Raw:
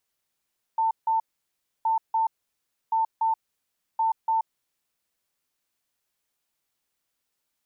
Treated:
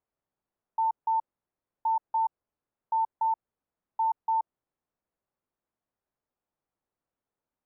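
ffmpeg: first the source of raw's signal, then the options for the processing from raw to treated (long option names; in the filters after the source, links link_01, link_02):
-f lavfi -i "aevalsrc='0.1*sin(2*PI*895*t)*clip(min(mod(mod(t,1.07),0.29),0.13-mod(mod(t,1.07),0.29))/0.005,0,1)*lt(mod(t,1.07),0.58)':duration=4.28:sample_rate=44100"
-af "lowpass=1000"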